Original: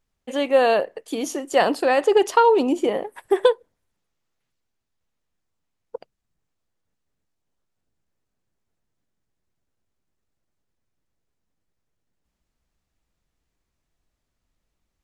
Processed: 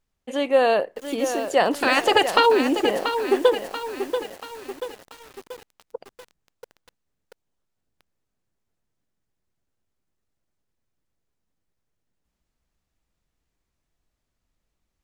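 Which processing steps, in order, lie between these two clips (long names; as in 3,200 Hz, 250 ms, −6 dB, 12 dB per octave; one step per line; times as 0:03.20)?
0:01.73–0:02.45: ceiling on every frequency bin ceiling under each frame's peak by 21 dB
feedback echo at a low word length 685 ms, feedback 55%, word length 6 bits, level −8 dB
level −1 dB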